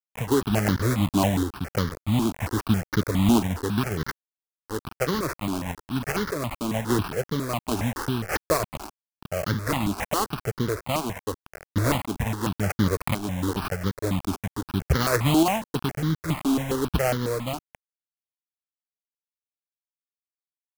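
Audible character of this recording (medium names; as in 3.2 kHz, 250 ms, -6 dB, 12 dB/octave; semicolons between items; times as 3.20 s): a quantiser's noise floor 6-bit, dither none; random-step tremolo; aliases and images of a low sample rate 3.6 kHz, jitter 20%; notches that jump at a steady rate 7.3 Hz 510–2500 Hz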